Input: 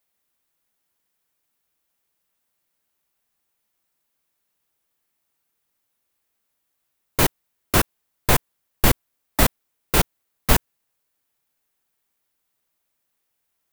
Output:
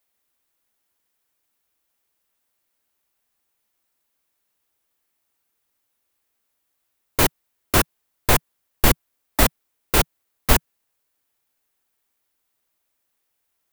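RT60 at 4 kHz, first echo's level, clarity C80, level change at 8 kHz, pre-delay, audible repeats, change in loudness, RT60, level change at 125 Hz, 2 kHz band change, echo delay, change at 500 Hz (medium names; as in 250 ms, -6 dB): no reverb, no echo, no reverb, +1.0 dB, no reverb, no echo, +1.0 dB, no reverb, -0.5 dB, +1.0 dB, no echo, +1.0 dB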